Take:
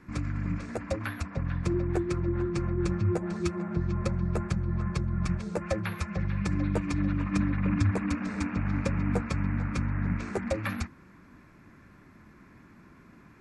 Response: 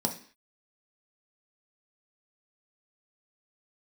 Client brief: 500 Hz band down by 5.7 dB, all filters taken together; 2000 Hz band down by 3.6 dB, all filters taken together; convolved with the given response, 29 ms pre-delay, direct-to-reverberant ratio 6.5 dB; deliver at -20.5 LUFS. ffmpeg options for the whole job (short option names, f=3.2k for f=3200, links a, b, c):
-filter_complex "[0:a]equalizer=f=500:t=o:g=-8.5,equalizer=f=2k:t=o:g=-4,asplit=2[a][b];[1:a]atrim=start_sample=2205,adelay=29[c];[b][c]afir=irnorm=-1:irlink=0,volume=-13dB[d];[a][d]amix=inputs=2:normalize=0,volume=9dB"